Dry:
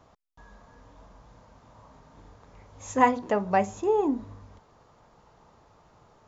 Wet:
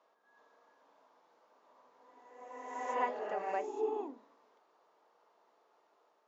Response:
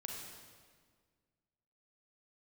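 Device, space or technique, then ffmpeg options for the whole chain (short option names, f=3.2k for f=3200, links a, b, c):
ghost voice: -filter_complex "[0:a]lowpass=5.5k,areverse[a];[1:a]atrim=start_sample=2205[b];[a][b]afir=irnorm=-1:irlink=0,areverse,highpass=f=350:w=0.5412,highpass=f=350:w=1.3066,volume=-9dB"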